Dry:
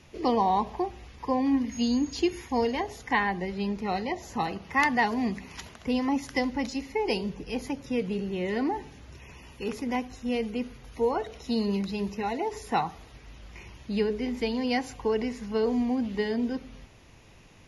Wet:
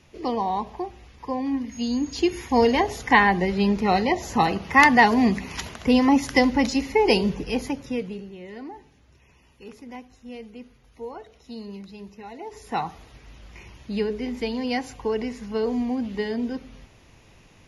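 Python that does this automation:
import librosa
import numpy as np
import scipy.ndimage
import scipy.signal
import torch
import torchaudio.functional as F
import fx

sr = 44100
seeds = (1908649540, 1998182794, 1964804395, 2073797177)

y = fx.gain(x, sr, db=fx.line((1.76, -1.5), (2.72, 9.0), (7.34, 9.0), (7.93, 1.5), (8.38, -10.0), (12.28, -10.0), (12.85, 1.0)))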